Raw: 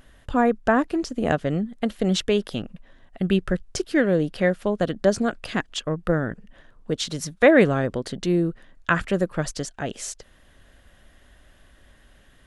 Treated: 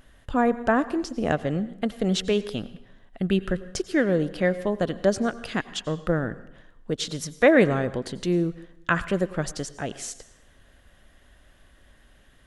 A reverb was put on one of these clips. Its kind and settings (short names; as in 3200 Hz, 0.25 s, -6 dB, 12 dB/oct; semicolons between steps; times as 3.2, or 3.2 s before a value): plate-style reverb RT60 0.78 s, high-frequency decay 0.9×, pre-delay 80 ms, DRR 15.5 dB; gain -2 dB